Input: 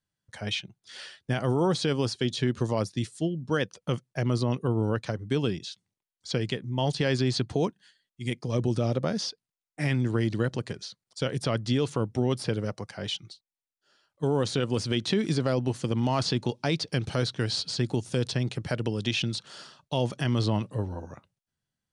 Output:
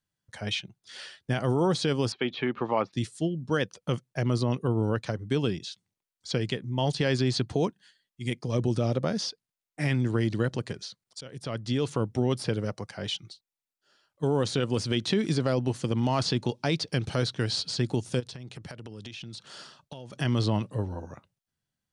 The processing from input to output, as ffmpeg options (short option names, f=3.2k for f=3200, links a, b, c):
-filter_complex "[0:a]asettb=1/sr,asplit=3[a][b][c];[a]atrim=end=2.124[d];[b]atrim=start=2.12:end=2.93,asetpts=PTS-STARTPTS,afade=t=in:d=0.004:c=qsin,afade=t=out:st=0.806:d=0.004:c=qsin,highpass=230,equalizer=f=820:t=q:w=4:g=9,equalizer=f=1.2k:t=q:w=4:g=8,equalizer=f=2.3k:t=q:w=4:g=7,lowpass=f=3.2k:w=0.5412,lowpass=f=3.2k:w=1.3066[e];[c]atrim=start=2.926[f];[d][e]acrossfade=d=0.004:c1=hsin:c2=qsin[g];[g][f]acrossfade=d=0.004:c1=qsin:c2=hsin,asplit=3[h][i][j];[h]afade=t=out:st=18.19:d=0.02[k];[i]acompressor=threshold=-37dB:ratio=16:attack=3.2:release=140:knee=1:detection=peak,afade=t=in:st=18.19:d=0.02,afade=t=out:st=20.12:d=0.02[l];[j]afade=t=in:st=20.12:d=0.02[m];[k][l][m]amix=inputs=3:normalize=0,asplit=2[n][o];[n]atrim=end=11.21,asetpts=PTS-STARTPTS,afade=t=out:st=11.206:d=0.004:c=hsin:silence=0.112202[p];[o]atrim=start=11.21,asetpts=PTS-STARTPTS,afade=t=in:d=0.72:silence=0.112202[q];[p][q]concat=n=2:v=0:a=1"